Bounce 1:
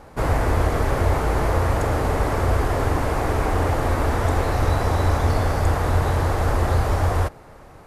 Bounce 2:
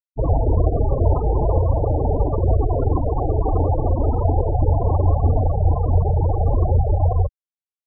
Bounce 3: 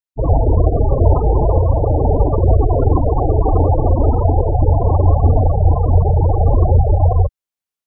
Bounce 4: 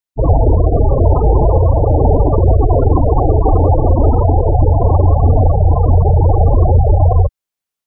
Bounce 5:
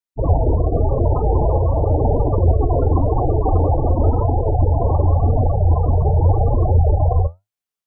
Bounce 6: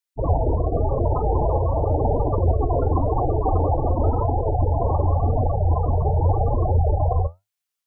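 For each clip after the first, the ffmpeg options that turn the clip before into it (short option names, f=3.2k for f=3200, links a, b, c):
-af "afftfilt=real='re*gte(hypot(re,im),0.224)':imag='im*gte(hypot(re,im),0.224)':win_size=1024:overlap=0.75,volume=3.5dB"
-af "dynaudnorm=f=170:g=3:m=6dB,volume=1dB"
-af "alimiter=level_in=5dB:limit=-1dB:release=50:level=0:latency=1,volume=-1dB"
-af "flanger=delay=8.3:depth=6.4:regen=66:speed=0.92:shape=sinusoidal,volume=-1dB"
-af "tiltshelf=f=970:g=-5"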